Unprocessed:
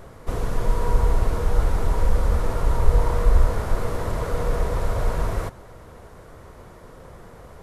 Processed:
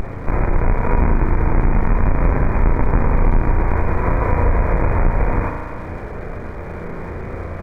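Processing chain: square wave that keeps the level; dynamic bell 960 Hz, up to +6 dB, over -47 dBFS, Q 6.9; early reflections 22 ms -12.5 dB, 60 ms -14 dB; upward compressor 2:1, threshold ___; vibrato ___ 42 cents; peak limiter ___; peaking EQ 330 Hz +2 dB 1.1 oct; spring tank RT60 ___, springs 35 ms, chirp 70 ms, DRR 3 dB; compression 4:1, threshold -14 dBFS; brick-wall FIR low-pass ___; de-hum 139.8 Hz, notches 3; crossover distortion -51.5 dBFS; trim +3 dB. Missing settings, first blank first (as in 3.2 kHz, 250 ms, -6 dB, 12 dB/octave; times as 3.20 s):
-23 dBFS, 0.56 Hz, -8 dBFS, 2.3 s, 2.5 kHz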